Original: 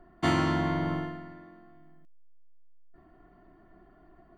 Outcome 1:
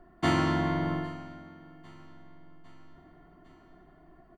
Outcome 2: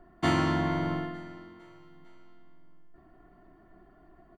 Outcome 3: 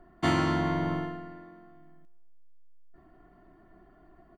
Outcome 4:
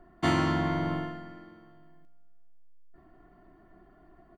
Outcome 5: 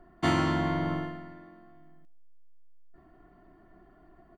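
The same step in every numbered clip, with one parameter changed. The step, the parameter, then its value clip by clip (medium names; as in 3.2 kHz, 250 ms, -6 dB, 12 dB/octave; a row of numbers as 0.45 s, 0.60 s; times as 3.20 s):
feedback delay, time: 804 ms, 454 ms, 120 ms, 227 ms, 67 ms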